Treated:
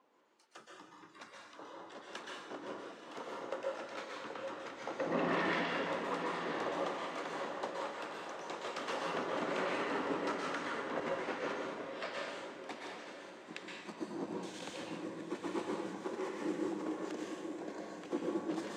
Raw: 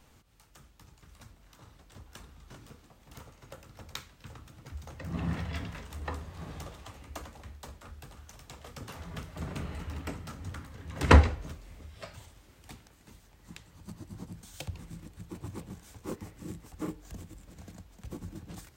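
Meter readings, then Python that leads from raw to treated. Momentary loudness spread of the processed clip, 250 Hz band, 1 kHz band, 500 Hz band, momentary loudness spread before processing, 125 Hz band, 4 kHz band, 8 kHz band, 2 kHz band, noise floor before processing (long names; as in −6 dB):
13 LU, −1.0 dB, 0.0 dB, +2.5 dB, 16 LU, −20.0 dB, −0.5 dB, −4.0 dB, 0.0 dB, −60 dBFS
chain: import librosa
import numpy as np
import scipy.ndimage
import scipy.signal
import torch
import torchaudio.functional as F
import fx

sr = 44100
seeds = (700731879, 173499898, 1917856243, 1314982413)

y = scipy.signal.sosfilt(scipy.signal.butter(4, 300.0, 'highpass', fs=sr, output='sos'), x)
y = fx.noise_reduce_blind(y, sr, reduce_db=15)
y = fx.high_shelf(y, sr, hz=5600.0, db=11.5)
y = fx.over_compress(y, sr, threshold_db=-41.0, ratio=-0.5)
y = fx.harmonic_tremolo(y, sr, hz=1.2, depth_pct=50, crossover_hz=1200.0)
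y = fx.spacing_loss(y, sr, db_at_10k=32)
y = fx.echo_diffused(y, sr, ms=879, feedback_pct=42, wet_db=-9.5)
y = fx.rev_plate(y, sr, seeds[0], rt60_s=0.95, hf_ratio=0.9, predelay_ms=110, drr_db=-2.0)
y = F.gain(torch.from_numpy(y), 8.0).numpy()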